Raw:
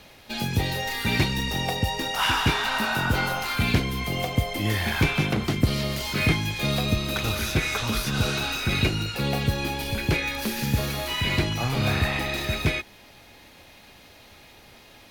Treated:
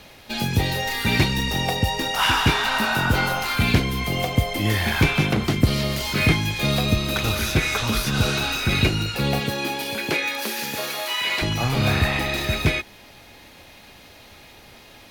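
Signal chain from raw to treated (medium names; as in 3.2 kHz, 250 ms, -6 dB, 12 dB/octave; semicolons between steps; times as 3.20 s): 9.39–11.41 s: high-pass 190 Hz -> 660 Hz 12 dB/octave; trim +3.5 dB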